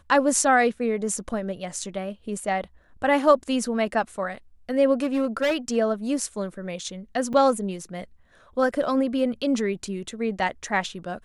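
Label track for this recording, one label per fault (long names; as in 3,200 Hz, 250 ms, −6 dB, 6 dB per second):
5.030000	5.770000	clipping −19 dBFS
7.330000	7.340000	drop-out 5.6 ms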